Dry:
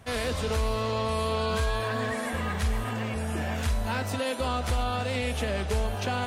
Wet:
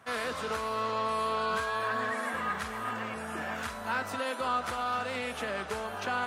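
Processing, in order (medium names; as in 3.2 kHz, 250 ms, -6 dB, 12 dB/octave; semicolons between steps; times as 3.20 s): high-pass 180 Hz 12 dB/octave; peaking EQ 1.3 kHz +11 dB 1.1 oct; 4.74–5.40 s: overload inside the chain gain 19.5 dB; trim -6.5 dB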